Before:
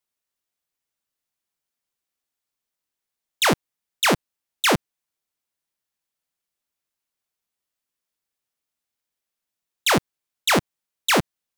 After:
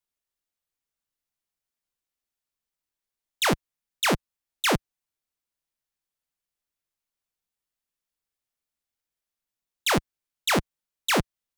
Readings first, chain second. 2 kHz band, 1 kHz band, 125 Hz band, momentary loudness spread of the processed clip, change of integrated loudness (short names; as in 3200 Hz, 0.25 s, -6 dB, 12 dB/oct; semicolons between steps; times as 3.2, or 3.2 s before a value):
-4.5 dB, -4.5 dB, -2.5 dB, 5 LU, -4.5 dB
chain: low shelf 68 Hz +11 dB; gain -4.5 dB